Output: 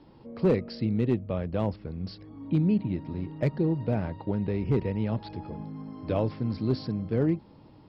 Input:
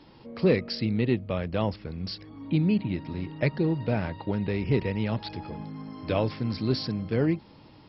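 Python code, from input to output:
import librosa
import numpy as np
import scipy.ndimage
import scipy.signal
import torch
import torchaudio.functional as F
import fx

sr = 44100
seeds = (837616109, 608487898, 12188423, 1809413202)

y = scipy.signal.sosfilt(scipy.signal.bessel(2, 3200.0, 'lowpass', norm='mag', fs=sr, output='sos'), x)
y = fx.peak_eq(y, sr, hz=2300.0, db=-7.5, octaves=2.1)
y = np.clip(y, -10.0 ** (-16.0 / 20.0), 10.0 ** (-16.0 / 20.0))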